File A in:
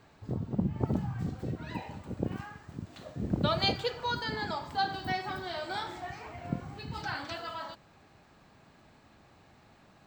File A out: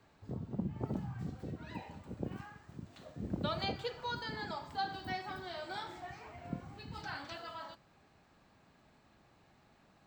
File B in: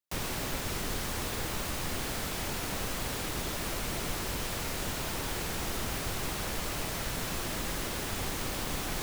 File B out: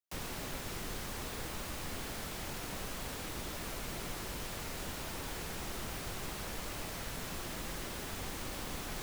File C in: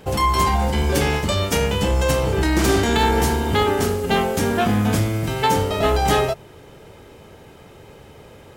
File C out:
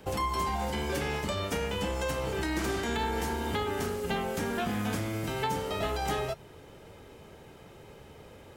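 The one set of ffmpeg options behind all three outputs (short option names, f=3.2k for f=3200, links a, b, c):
-filter_complex "[0:a]acrossover=split=190|1100|2400[a][b][c][d];[a]acompressor=threshold=-31dB:ratio=4[e];[b]acompressor=threshold=-26dB:ratio=4[f];[c]acompressor=threshold=-32dB:ratio=4[g];[d]acompressor=threshold=-35dB:ratio=4[h];[e][f][g][h]amix=inputs=4:normalize=0,flanger=delay=3.3:depth=2.8:regen=-83:speed=0.59:shape=triangular,volume=-2dB"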